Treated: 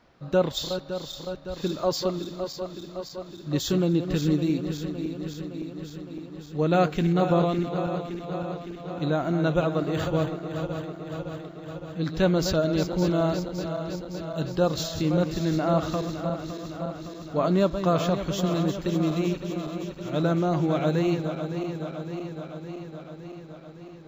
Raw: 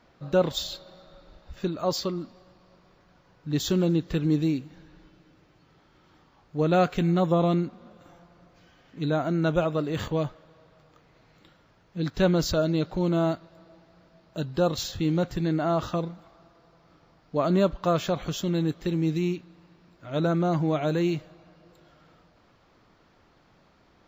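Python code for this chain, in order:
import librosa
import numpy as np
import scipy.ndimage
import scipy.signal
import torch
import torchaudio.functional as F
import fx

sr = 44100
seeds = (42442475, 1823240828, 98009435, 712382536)

y = fx.reverse_delay_fb(x, sr, ms=281, feedback_pct=82, wet_db=-9.0)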